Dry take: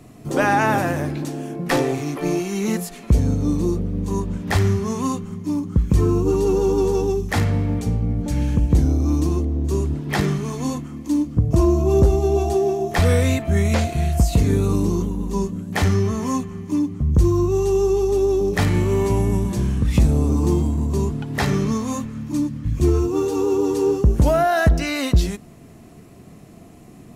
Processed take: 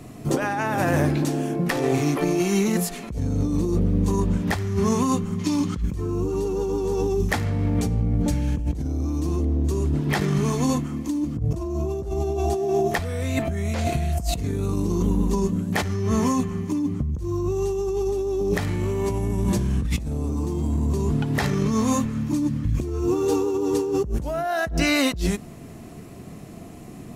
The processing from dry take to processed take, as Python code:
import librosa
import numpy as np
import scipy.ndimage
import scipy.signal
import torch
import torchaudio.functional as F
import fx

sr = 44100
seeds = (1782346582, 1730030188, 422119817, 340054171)

y = fx.peak_eq(x, sr, hz=3600.0, db=15.0, octaves=2.9, at=(5.38, 5.8), fade=0.02)
y = fx.over_compress(y, sr, threshold_db=-23.0, ratio=-1.0)